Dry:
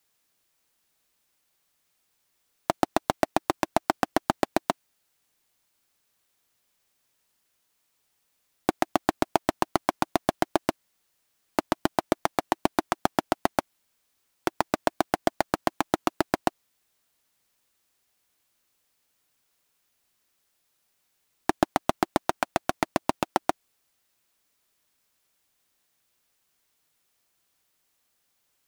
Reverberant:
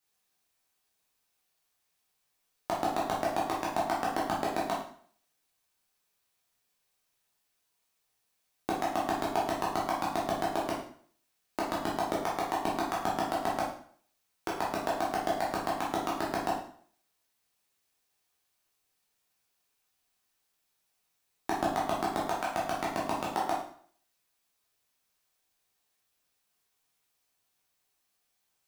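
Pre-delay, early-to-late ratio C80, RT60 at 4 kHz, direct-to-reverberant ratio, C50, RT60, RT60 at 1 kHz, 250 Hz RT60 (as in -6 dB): 5 ms, 8.0 dB, 0.50 s, -6.0 dB, 3.5 dB, 0.55 s, 0.55 s, 0.55 s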